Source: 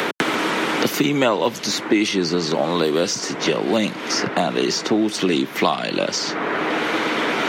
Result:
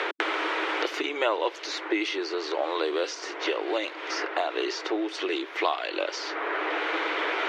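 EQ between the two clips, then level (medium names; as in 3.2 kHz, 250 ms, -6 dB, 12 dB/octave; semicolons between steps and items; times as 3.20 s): brick-wall FIR high-pass 300 Hz; low-pass 3 kHz 12 dB/octave; tilt EQ +1.5 dB/octave; -6.0 dB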